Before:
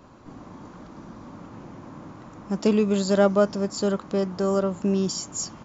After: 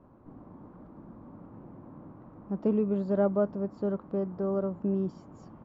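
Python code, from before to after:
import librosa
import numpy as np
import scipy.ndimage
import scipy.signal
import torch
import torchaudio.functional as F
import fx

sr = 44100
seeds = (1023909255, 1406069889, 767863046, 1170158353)

y = scipy.signal.sosfilt(scipy.signal.bessel(2, 800.0, 'lowpass', norm='mag', fs=sr, output='sos'), x)
y = F.gain(torch.from_numpy(y), -5.5).numpy()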